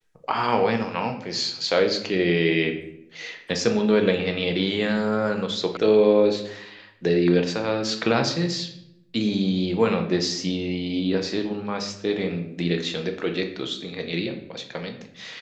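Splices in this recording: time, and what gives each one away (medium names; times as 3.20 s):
5.77 s: sound stops dead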